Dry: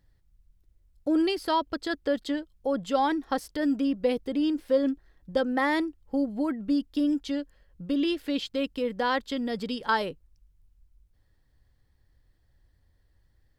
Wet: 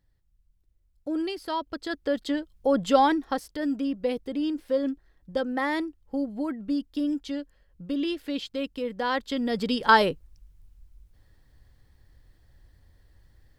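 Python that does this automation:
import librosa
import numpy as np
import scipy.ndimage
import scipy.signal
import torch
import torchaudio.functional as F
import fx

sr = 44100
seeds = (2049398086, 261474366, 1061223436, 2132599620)

y = fx.gain(x, sr, db=fx.line((1.47, -5.0), (2.91, 6.5), (3.45, -2.0), (8.97, -2.0), (9.95, 8.0)))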